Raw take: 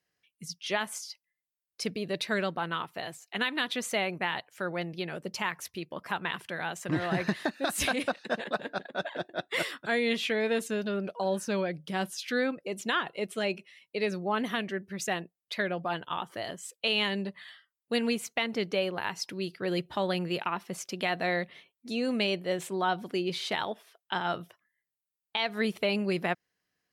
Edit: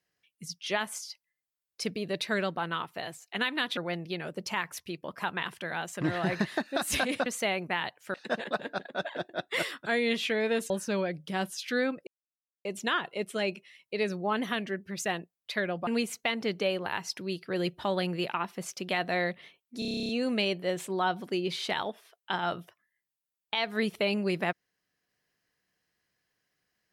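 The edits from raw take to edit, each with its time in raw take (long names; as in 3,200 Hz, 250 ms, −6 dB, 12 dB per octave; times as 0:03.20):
0:03.77–0:04.65: move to 0:08.14
0:10.70–0:11.30: remove
0:12.67: splice in silence 0.58 s
0:15.89–0:17.99: remove
0:21.91: stutter 0.03 s, 11 plays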